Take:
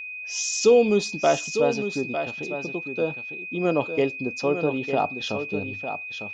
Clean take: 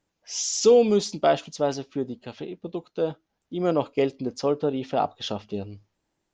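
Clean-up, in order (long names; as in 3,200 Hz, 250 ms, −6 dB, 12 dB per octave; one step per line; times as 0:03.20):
notch filter 2,500 Hz, Q 30
echo removal 903 ms −8.5 dB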